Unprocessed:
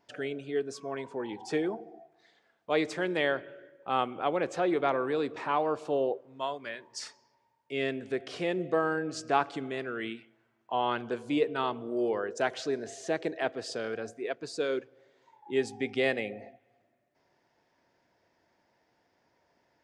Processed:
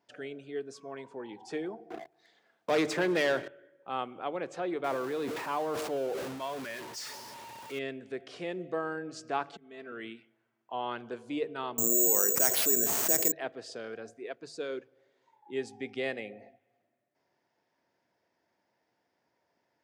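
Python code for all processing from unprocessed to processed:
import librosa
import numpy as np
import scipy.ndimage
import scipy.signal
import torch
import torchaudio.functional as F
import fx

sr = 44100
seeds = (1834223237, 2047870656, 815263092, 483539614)

y = fx.chain(x, sr, fx.leveller(passes=3),
    fx.band_squash(depth_pct=40), at=(1.9, 3.48))
y = fx.chain(y, sr, fx.zero_step(step_db=-34.5),
    fx.sustainer(db_per_s=29.0), at=(4.84, 7.79))
y = fx.chain(y, sr, fx.lowpass(hz=7100.0, slope=12),
    fx.auto_swell(attack_ms=535.0),
    fx.comb(ms=4.5, depth=0.97), at=(9.52, 9.92))
y = fx.chain(y, sr, fx.resample_bad(factor=6, down='none', up='zero_stuff'),
    fx.env_flatten(amount_pct=70), at=(11.78, 13.32))
y = scipy.signal.sosfilt(scipy.signal.butter(2, 94.0, 'highpass', fs=sr, output='sos'), y)
y = fx.hum_notches(y, sr, base_hz=50, count=3)
y = F.gain(torch.from_numpy(y), -6.0).numpy()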